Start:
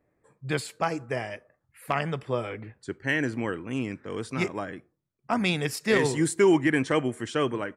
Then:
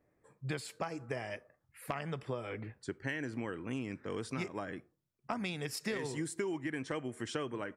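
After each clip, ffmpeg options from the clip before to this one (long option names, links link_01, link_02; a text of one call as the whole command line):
ffmpeg -i in.wav -af "acompressor=threshold=-31dB:ratio=12,equalizer=frequency=5300:width=6.9:gain=3,volume=-2.5dB" out.wav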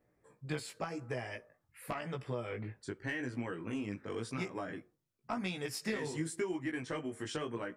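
ffmpeg -i in.wav -af "asoftclip=type=tanh:threshold=-22.5dB,flanger=delay=16:depth=3.6:speed=0.9,volume=3dB" out.wav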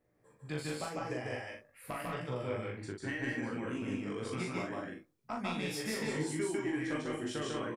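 ffmpeg -i in.wav -filter_complex "[0:a]asplit=2[link_01][link_02];[link_02]adelay=40,volume=-4dB[link_03];[link_01][link_03]amix=inputs=2:normalize=0,aecho=1:1:148.7|192.4:0.891|0.562,volume=-2.5dB" out.wav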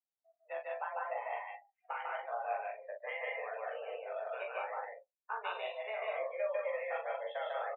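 ffmpeg -i in.wav -af "highpass=frequency=350:width_type=q:width=0.5412,highpass=frequency=350:width_type=q:width=1.307,lowpass=frequency=3600:width_type=q:width=0.5176,lowpass=frequency=3600:width_type=q:width=0.7071,lowpass=frequency=3600:width_type=q:width=1.932,afreqshift=210,highshelf=frequency=2700:gain=-11,afftdn=noise_reduction=34:noise_floor=-51,volume=2.5dB" out.wav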